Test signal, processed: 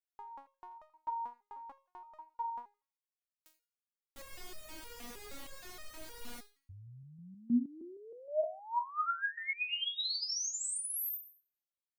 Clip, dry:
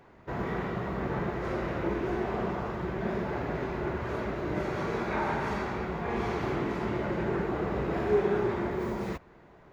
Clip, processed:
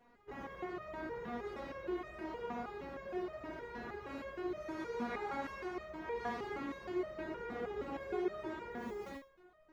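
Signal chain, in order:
on a send: feedback echo with a high-pass in the loop 83 ms, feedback 32%, high-pass 770 Hz, level −16.5 dB
on the sum: step-sequenced resonator 6.4 Hz 240–620 Hz
level +5.5 dB

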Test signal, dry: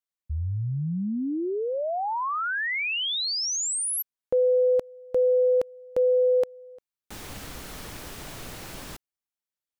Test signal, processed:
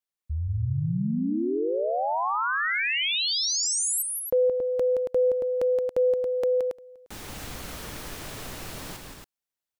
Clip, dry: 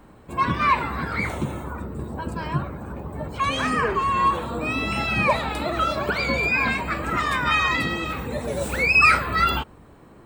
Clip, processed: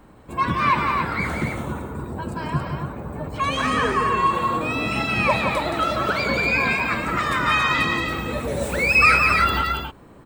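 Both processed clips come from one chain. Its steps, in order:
loudspeakers that aren't time-aligned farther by 59 metres −6 dB, 95 metres −6 dB

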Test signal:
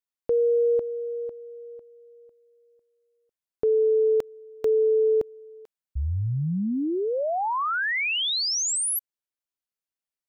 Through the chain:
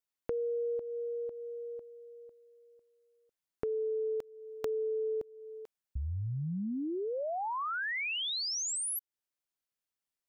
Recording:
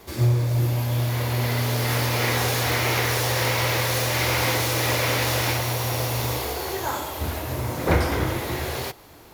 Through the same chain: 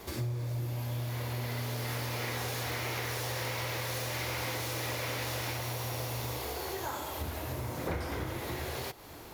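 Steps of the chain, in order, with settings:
downward compressor 3 to 1, threshold −37 dBFS

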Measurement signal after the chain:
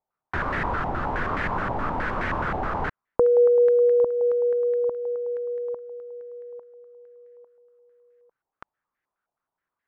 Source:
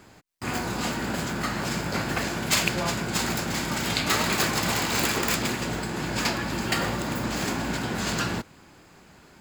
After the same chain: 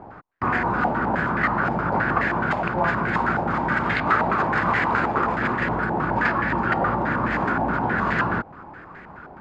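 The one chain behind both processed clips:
downward compressor 2 to 1, threshold −33 dBFS
low-pass on a step sequencer 9.5 Hz 810–1,800 Hz
level +7.5 dB

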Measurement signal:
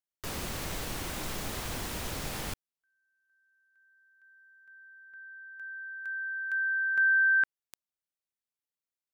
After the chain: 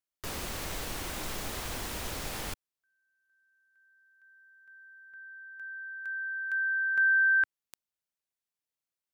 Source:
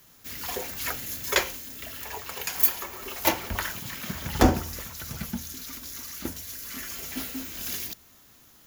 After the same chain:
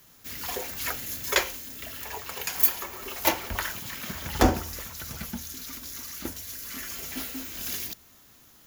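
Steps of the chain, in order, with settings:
dynamic equaliser 150 Hz, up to −5 dB, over −45 dBFS, Q 0.86

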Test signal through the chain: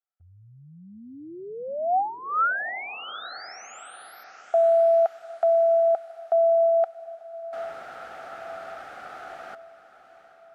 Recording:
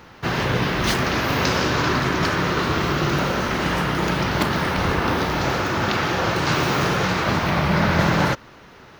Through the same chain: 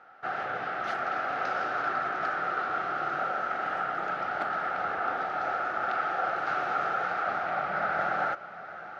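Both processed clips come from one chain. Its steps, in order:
pair of resonant band-passes 1,000 Hz, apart 0.82 octaves
feedback delay with all-pass diffusion 798 ms, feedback 52%, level −14.5 dB

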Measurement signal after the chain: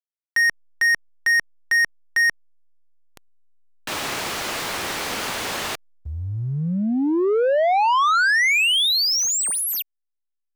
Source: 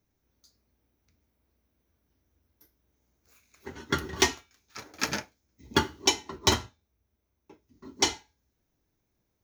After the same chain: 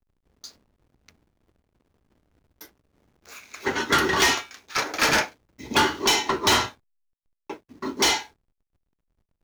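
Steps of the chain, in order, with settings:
mid-hump overdrive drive 33 dB, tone 4,700 Hz, clips at −7 dBFS
slack as between gear wheels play −43.5 dBFS
level −3 dB

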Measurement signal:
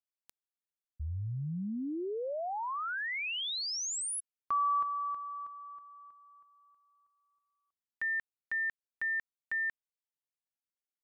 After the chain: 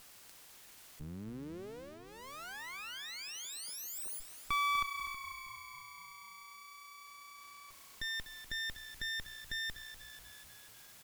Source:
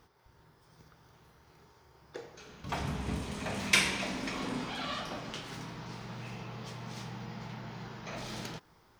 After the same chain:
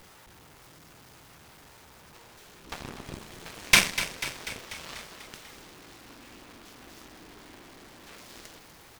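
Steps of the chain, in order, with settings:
converter with a step at zero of −29.5 dBFS
parametric band 380 Hz −10.5 dB 0.95 octaves
harmonic generator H 5 −15 dB, 6 −20 dB, 7 −11 dB, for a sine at −9.5 dBFS
echo with shifted repeats 245 ms, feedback 63%, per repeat −30 Hz, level −12 dB
level +5.5 dB

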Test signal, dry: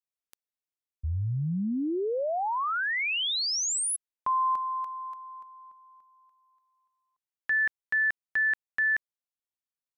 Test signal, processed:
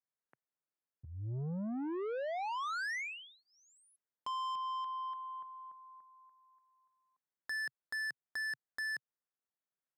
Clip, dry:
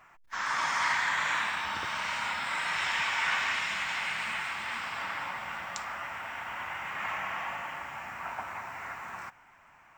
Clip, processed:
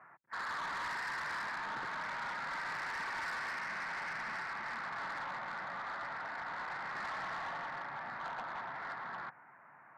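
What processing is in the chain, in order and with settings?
elliptic band-pass filter 130–1,800 Hz
downward compressor 2 to 1, threshold −33 dBFS
soft clipping −37 dBFS
level +1 dB

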